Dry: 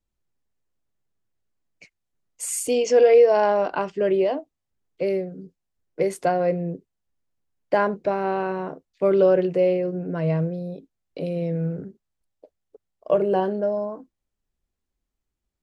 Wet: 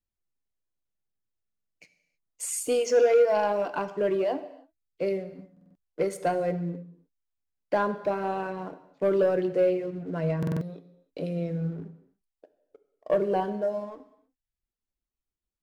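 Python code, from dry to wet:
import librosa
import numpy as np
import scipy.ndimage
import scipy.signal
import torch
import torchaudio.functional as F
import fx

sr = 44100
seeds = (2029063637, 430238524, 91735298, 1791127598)

y = fx.dereverb_blind(x, sr, rt60_s=0.63)
y = fx.leveller(y, sr, passes=1)
y = fx.rev_gated(y, sr, seeds[0], gate_ms=340, shape='falling', drr_db=10.5)
y = fx.buffer_glitch(y, sr, at_s=(1.46, 5.52, 10.38), block=2048, repeats=4)
y = y * librosa.db_to_amplitude(-7.0)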